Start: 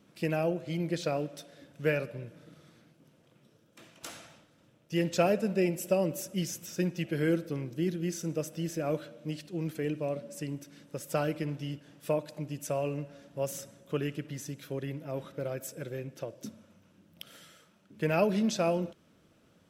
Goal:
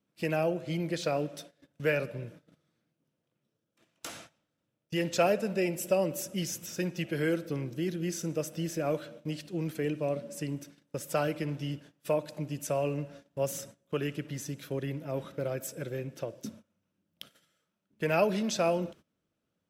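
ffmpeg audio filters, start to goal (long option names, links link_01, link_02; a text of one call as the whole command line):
ffmpeg -i in.wav -filter_complex "[0:a]agate=range=-20dB:threshold=-50dB:ratio=16:detection=peak,acrossover=split=430|2600[link_01][link_02][link_03];[link_01]alimiter=level_in=5.5dB:limit=-24dB:level=0:latency=1:release=172,volume=-5.5dB[link_04];[link_04][link_02][link_03]amix=inputs=3:normalize=0,volume=2dB" out.wav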